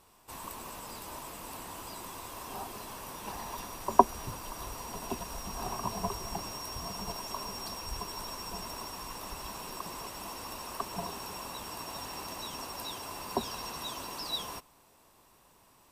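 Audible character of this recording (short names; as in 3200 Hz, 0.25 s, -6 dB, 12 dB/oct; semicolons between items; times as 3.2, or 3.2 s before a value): noise floor -62 dBFS; spectral tilt -3.5 dB/oct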